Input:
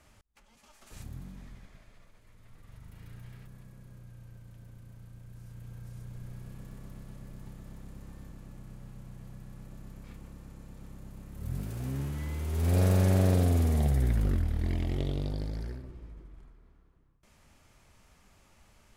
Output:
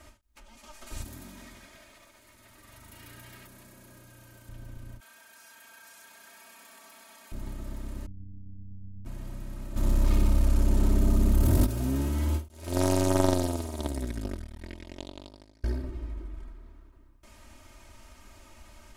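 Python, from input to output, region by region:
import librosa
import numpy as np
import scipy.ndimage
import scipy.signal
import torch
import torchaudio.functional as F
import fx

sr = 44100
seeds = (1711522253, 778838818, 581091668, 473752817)

y = fx.chain(x, sr, fx.highpass(hz=320.0, slope=6),
    fx.high_shelf(hz=4900.0, db=6.5), at=(1.04, 4.49))
y = fx.chain(y, sr, fx.highpass(hz=1000.0, slope=12),
    fx.comb(ms=4.4, depth=0.7),
    fx.env_flatten(amount_pct=50), at=(5.0, 7.32))
y = fx.chain(y, sr, fx.cheby2_lowpass(hz=940.0, order=4, stop_db=70),
    fx.robotise(hz=97.0), at=(8.06, 9.06))
y = fx.chain(y, sr, fx.room_flutter(wall_m=10.4, rt60_s=1.0),
    fx.leveller(passes=3), at=(9.76, 11.67))
y = fx.chain(y, sr, fx.lowpass(hz=9600.0, slope=12),
    fx.high_shelf(hz=3900.0, db=9.0),
    fx.power_curve(exponent=3.0), at=(12.48, 15.64))
y = fx.dynamic_eq(y, sr, hz=2000.0, q=1.3, threshold_db=-59.0, ratio=4.0, max_db=-5)
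y = y + 0.84 * np.pad(y, (int(3.2 * sr / 1000.0), 0))[:len(y)]
y = fx.end_taper(y, sr, db_per_s=210.0)
y = y * librosa.db_to_amplitude(6.5)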